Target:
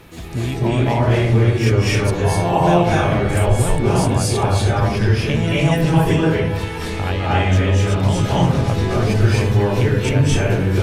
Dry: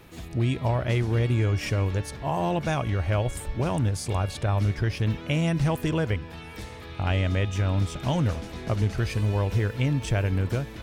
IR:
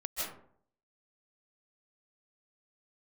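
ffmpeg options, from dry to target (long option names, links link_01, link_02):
-filter_complex "[0:a]acompressor=threshold=-25dB:ratio=6[link_01];[1:a]atrim=start_sample=2205,asetrate=27783,aresample=44100[link_02];[link_01][link_02]afir=irnorm=-1:irlink=0,volume=7.5dB"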